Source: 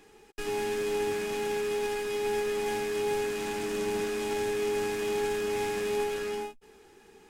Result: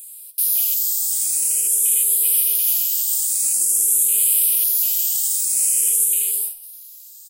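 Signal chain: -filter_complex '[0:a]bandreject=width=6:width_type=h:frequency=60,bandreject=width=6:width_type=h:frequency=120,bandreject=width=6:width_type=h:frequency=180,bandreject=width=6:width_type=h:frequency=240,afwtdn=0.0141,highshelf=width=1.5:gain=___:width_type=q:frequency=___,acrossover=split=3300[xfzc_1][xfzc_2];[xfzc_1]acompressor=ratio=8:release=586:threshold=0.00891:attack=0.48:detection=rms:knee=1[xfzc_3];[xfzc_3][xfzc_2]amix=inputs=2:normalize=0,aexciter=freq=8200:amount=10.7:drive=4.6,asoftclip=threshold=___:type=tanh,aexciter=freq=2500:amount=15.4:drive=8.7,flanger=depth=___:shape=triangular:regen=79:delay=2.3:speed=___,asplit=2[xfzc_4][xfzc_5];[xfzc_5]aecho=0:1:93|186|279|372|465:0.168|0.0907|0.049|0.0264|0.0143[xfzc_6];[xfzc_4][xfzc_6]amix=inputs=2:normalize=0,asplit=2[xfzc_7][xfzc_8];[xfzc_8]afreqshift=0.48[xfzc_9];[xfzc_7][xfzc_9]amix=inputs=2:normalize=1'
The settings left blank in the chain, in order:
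6.5, 3700, 0.0422, 7.6, 1.8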